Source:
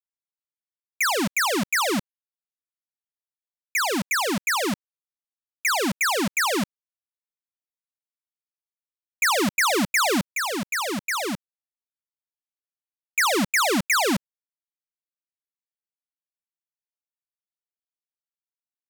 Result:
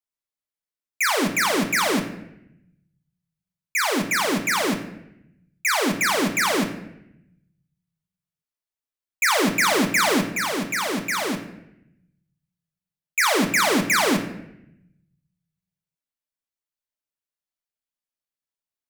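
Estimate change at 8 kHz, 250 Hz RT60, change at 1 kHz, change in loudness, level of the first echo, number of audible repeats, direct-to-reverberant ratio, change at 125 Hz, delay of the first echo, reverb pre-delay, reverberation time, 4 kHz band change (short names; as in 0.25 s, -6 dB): +1.0 dB, 1.3 s, +1.5 dB, +1.5 dB, none, none, 3.0 dB, +2.5 dB, none, 3 ms, 0.85 s, +1.5 dB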